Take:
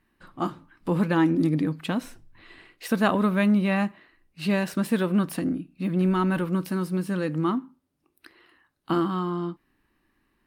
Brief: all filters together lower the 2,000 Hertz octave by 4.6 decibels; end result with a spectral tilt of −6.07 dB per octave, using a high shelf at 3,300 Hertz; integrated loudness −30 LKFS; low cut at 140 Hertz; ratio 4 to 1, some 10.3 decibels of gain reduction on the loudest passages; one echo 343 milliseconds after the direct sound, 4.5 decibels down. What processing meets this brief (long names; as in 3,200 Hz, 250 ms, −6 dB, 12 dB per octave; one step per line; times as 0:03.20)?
high-pass filter 140 Hz
parametric band 2,000 Hz −4 dB
high-shelf EQ 3,300 Hz −7.5 dB
downward compressor 4 to 1, threshold −31 dBFS
single-tap delay 343 ms −4.5 dB
level +4 dB